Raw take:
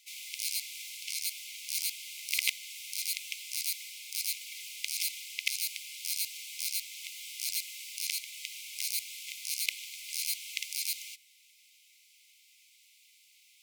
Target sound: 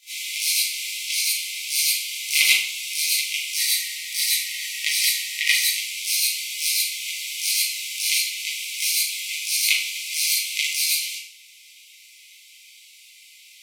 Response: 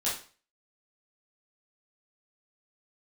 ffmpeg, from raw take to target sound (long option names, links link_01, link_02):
-filter_complex "[0:a]asettb=1/sr,asplit=3[link_01][link_02][link_03];[link_01]atrim=end=3.574[link_04];[link_02]atrim=start=3.57:end=5.7,asetpts=PTS-STARTPTS,afade=type=in:duration=0.004:curve=qsin,afade=type=out:start_time=2.126:duration=0.004:curve=qsin,afreqshift=-170[link_05];[link_03]atrim=start=5.696[link_06];[link_04][link_05]acrossfade=duration=0.004:curve1=hsin:curve2=qsin[link_07];[link_07][link_06]acrossfade=duration=0.004:curve1=qsin:curve2=hsin[link_08];[1:a]atrim=start_sample=2205,asetrate=29547,aresample=44100[link_09];[link_08][link_09]afir=irnorm=-1:irlink=0,volume=3.5dB"